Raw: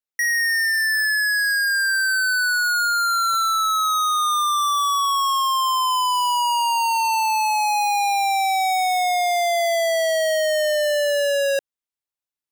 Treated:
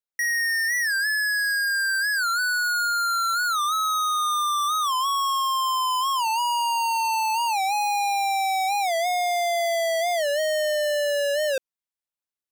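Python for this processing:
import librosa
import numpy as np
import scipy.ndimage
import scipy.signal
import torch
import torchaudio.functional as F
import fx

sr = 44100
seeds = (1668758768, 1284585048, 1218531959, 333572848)

y = fx.record_warp(x, sr, rpm=45.0, depth_cents=160.0)
y = y * 10.0 ** (-3.5 / 20.0)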